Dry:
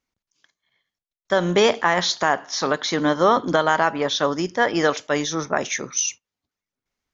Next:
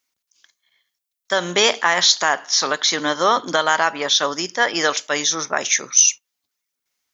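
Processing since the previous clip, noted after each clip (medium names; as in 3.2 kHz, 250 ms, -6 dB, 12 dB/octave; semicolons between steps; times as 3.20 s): tilt EQ +3.5 dB/octave; trim +1 dB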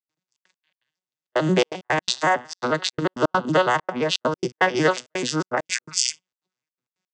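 vocoder on a broken chord major triad, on B2, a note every 87 ms; trance gate ".xxx.x.x.xxxxx" 166 bpm -60 dB; trim -1 dB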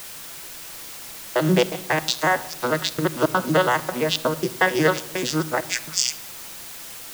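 added noise white -38 dBFS; simulated room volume 3900 m³, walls furnished, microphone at 0.73 m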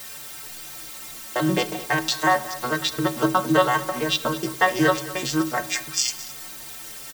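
inharmonic resonator 66 Hz, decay 0.34 s, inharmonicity 0.03; delay 212 ms -17 dB; trim +8 dB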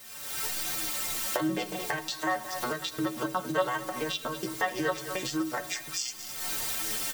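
recorder AGC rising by 41 dB/s; flange 1.3 Hz, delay 9.1 ms, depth 2.5 ms, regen +34%; trim -7 dB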